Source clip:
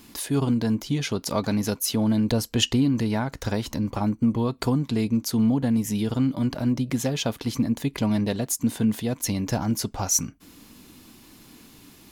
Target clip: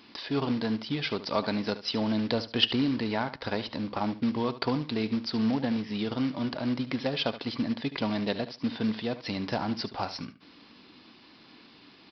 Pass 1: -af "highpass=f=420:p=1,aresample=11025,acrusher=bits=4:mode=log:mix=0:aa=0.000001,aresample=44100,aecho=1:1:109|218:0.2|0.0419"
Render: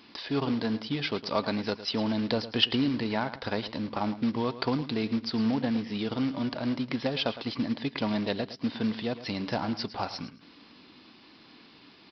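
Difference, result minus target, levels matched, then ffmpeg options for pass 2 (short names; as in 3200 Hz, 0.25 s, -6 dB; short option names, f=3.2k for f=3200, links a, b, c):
echo 36 ms late
-af "highpass=f=420:p=1,aresample=11025,acrusher=bits=4:mode=log:mix=0:aa=0.000001,aresample=44100,aecho=1:1:73|146:0.2|0.0419"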